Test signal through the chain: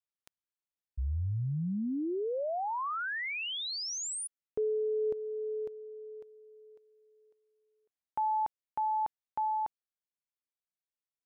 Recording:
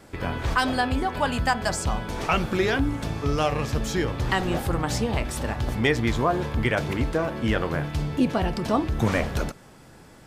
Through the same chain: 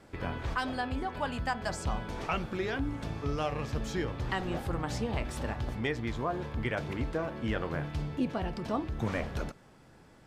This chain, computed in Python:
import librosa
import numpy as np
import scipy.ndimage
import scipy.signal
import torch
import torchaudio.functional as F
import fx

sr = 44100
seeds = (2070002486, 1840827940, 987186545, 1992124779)

y = fx.high_shelf(x, sr, hz=7100.0, db=-9.5)
y = fx.rider(y, sr, range_db=3, speed_s=0.5)
y = y * librosa.db_to_amplitude(-8.5)